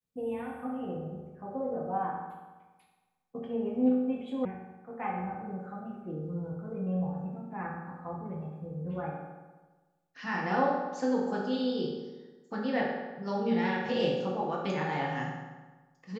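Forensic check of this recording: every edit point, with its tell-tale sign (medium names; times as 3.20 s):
4.45 s: sound stops dead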